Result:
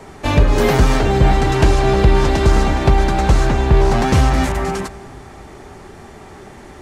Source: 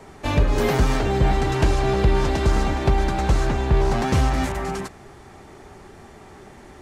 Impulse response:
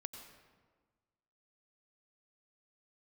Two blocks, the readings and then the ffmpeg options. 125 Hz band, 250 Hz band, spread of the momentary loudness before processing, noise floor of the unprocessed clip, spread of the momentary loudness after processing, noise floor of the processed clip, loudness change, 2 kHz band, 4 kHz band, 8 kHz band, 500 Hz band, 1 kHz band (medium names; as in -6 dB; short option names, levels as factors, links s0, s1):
+6.0 dB, +6.0 dB, 5 LU, -45 dBFS, 5 LU, -39 dBFS, +6.0 dB, +6.0 dB, +6.0 dB, +6.0 dB, +6.0 dB, +6.0 dB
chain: -filter_complex "[0:a]asplit=2[s0][s1];[1:a]atrim=start_sample=2205,asetrate=24255,aresample=44100[s2];[s1][s2]afir=irnorm=-1:irlink=0,volume=0.224[s3];[s0][s3]amix=inputs=2:normalize=0,volume=1.68"